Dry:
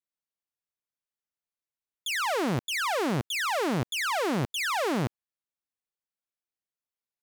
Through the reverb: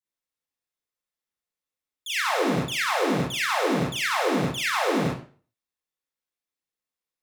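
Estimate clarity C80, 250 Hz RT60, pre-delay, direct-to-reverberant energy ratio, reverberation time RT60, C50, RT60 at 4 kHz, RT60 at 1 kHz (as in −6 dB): 9.0 dB, 0.45 s, 34 ms, −6.5 dB, 0.40 s, 0.5 dB, 0.35 s, 0.40 s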